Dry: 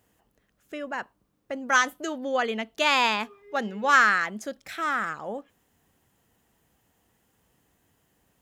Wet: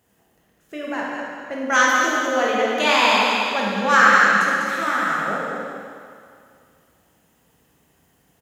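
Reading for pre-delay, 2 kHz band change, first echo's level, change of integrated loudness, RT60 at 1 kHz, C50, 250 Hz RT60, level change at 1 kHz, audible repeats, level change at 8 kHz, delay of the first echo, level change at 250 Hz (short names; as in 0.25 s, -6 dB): 8 ms, +7.5 dB, -7.5 dB, +7.0 dB, 2.3 s, -3.0 dB, 2.2 s, +7.5 dB, 1, +7.5 dB, 0.2 s, +8.0 dB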